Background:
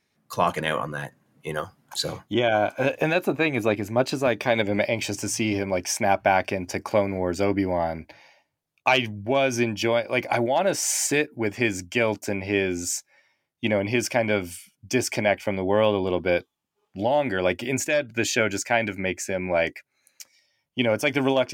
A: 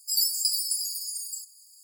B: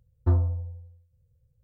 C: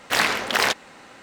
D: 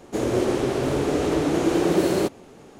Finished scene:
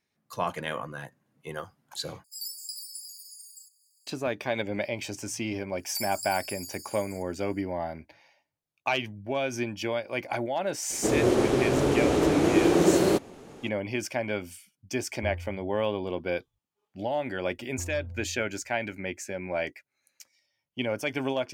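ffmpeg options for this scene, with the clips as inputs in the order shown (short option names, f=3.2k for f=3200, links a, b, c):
-filter_complex "[1:a]asplit=2[a][b];[2:a]asplit=2[c][d];[0:a]volume=-7.5dB[e];[b]aecho=1:1:1.5:0.56[f];[d]acompressor=threshold=-34dB:ratio=6:attack=3.2:release=140:knee=1:detection=peak[g];[e]asplit=2[h][i];[h]atrim=end=2.244[j];[a]atrim=end=1.83,asetpts=PTS-STARTPTS,volume=-13dB[k];[i]atrim=start=4.066[l];[f]atrim=end=1.83,asetpts=PTS-STARTPTS,volume=-12.5dB,afade=t=in:d=0.004:c=hsin,afade=t=out:st=1.826:d=0.004:c=hsin,adelay=5780[m];[4:a]atrim=end=2.79,asetpts=PTS-STARTPTS,volume=-0.5dB,afade=t=in:d=0.004:c=hsin,afade=t=out:st=2.786:d=0.004:c=hsin,adelay=480690S[n];[c]atrim=end=1.63,asetpts=PTS-STARTPTS,volume=-14dB,afade=t=in:d=0.004:c=hsin,afade=t=out:st=1.626:d=0.004:c=hsin,adelay=14960[o];[g]atrim=end=1.63,asetpts=PTS-STARTPTS,volume=-3dB,afade=t=in:d=0.004:c=hsin,afade=t=out:st=1.626:d=0.004:c=hsin,adelay=17520[p];[j][k]acrossfade=d=0.004:c1=hsin:c2=hsin[q];[q][l]acrossfade=d=0.004:c1=hsin:c2=hsin[r];[r][m][n][o][p]amix=inputs=5:normalize=0"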